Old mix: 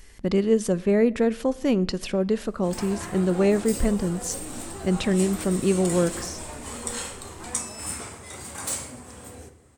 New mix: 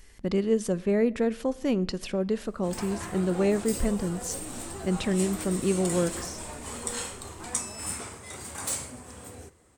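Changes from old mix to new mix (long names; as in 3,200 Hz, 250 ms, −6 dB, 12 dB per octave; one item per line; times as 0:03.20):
speech −4.0 dB
background: send −11.5 dB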